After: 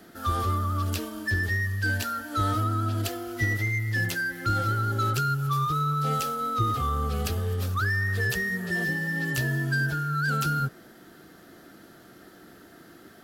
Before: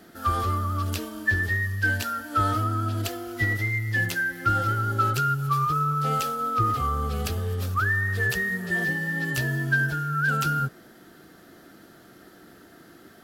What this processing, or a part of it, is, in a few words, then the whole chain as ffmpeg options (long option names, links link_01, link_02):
one-band saturation: -filter_complex "[0:a]acrossover=split=520|4200[link_01][link_02][link_03];[link_02]asoftclip=type=tanh:threshold=-25dB[link_04];[link_01][link_04][link_03]amix=inputs=3:normalize=0"